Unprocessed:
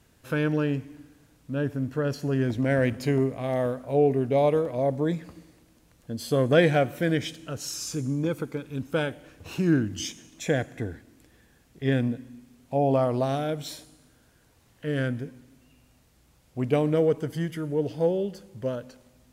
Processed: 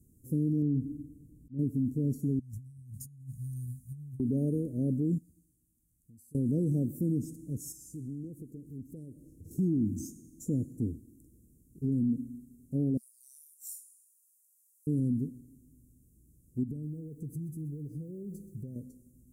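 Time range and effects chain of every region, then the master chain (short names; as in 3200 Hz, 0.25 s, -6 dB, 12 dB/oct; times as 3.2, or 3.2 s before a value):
0.62–1.59 auto swell 0.373 s + tilt shelf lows +6 dB, about 830 Hz
2.39–4.2 inverse Chebyshev band-stop 340–2100 Hz, stop band 50 dB + low shelf 120 Hz -10 dB + negative-ratio compressor -41 dBFS, ratio -0.5
5.18–6.35 passive tone stack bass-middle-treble 5-5-5 + compressor 10:1, threshold -51 dBFS
7.72–9.51 compressor 2:1, threshold -45 dBFS + Doppler distortion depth 0.31 ms
12.97–14.87 steep high-pass 2200 Hz + high shelf 4700 Hz +5 dB
16.63–18.76 bell 150 Hz +7.5 dB 0.38 oct + compressor 10:1, threshold -35 dBFS + lo-fi delay 0.128 s, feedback 35%, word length 9-bit, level -14.5 dB
whole clip: inverse Chebyshev band-stop 900–3400 Hz, stop band 60 dB; dynamic EQ 230 Hz, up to +7 dB, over -42 dBFS, Q 2.6; limiter -22 dBFS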